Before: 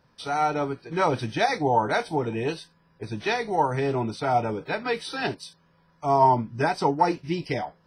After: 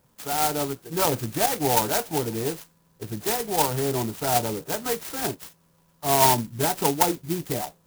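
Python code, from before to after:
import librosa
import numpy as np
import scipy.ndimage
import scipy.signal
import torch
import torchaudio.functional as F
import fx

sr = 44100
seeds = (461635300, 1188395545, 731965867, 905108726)

y = fx.clock_jitter(x, sr, seeds[0], jitter_ms=0.13)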